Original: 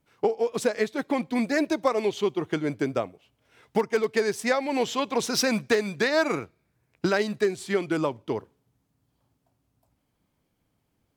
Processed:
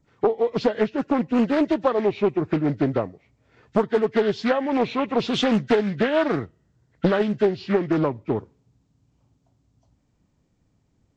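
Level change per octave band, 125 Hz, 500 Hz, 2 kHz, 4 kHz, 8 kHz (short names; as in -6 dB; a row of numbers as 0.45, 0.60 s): +8.0 dB, +3.5 dB, -2.0 dB, 0.0 dB, under -10 dB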